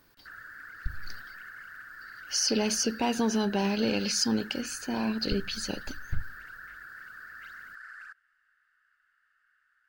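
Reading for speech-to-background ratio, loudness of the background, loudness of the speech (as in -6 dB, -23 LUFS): 15.5 dB, -44.5 LUFS, -29.0 LUFS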